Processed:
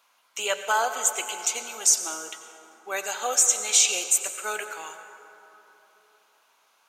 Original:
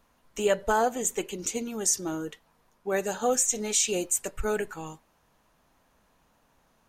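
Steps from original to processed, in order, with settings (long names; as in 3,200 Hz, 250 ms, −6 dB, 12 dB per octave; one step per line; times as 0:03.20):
high-pass filter 940 Hz 12 dB per octave
parametric band 3,100 Hz +4 dB 2.4 octaves
notch filter 1,800 Hz, Q 6.5
on a send: convolution reverb RT60 3.4 s, pre-delay 79 ms, DRR 8 dB
on the sum: level +4 dB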